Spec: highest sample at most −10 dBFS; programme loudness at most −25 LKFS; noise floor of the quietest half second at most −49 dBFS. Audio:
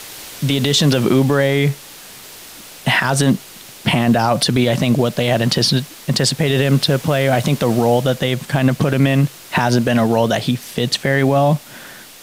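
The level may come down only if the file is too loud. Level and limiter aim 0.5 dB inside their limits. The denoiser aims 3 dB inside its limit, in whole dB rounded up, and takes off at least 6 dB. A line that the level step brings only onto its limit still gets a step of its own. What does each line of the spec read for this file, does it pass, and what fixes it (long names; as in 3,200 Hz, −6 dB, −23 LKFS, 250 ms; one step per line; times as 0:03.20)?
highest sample −4.5 dBFS: out of spec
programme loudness −16.5 LKFS: out of spec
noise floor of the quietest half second −38 dBFS: out of spec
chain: broadband denoise 6 dB, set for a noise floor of −38 dBFS
level −9 dB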